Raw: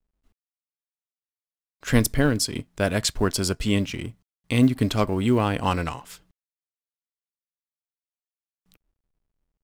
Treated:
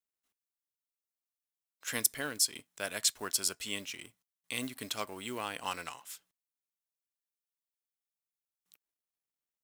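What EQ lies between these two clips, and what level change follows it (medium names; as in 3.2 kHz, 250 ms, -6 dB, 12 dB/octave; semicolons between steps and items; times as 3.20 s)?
high-pass 1.3 kHz 6 dB/octave; treble shelf 5.8 kHz +10 dB; band-stop 4.7 kHz, Q 19; -8.0 dB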